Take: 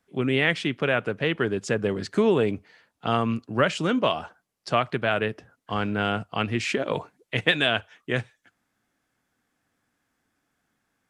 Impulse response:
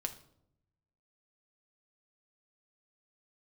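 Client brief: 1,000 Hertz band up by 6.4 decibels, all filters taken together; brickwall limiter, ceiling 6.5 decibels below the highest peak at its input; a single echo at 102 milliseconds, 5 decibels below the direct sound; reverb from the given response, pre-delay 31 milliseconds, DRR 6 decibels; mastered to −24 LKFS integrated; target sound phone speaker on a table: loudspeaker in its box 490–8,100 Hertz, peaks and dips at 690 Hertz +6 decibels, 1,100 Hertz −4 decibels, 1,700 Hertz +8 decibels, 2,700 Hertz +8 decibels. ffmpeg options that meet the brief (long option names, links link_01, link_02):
-filter_complex "[0:a]equalizer=frequency=1000:width_type=o:gain=7,alimiter=limit=-9.5dB:level=0:latency=1,aecho=1:1:102:0.562,asplit=2[link_01][link_02];[1:a]atrim=start_sample=2205,adelay=31[link_03];[link_02][link_03]afir=irnorm=-1:irlink=0,volume=-6dB[link_04];[link_01][link_04]amix=inputs=2:normalize=0,highpass=frequency=490:width=0.5412,highpass=frequency=490:width=1.3066,equalizer=frequency=690:width_type=q:width=4:gain=6,equalizer=frequency=1100:width_type=q:width=4:gain=-4,equalizer=frequency=1700:width_type=q:width=4:gain=8,equalizer=frequency=2700:width_type=q:width=4:gain=8,lowpass=frequency=8100:width=0.5412,lowpass=frequency=8100:width=1.3066,volume=-3dB"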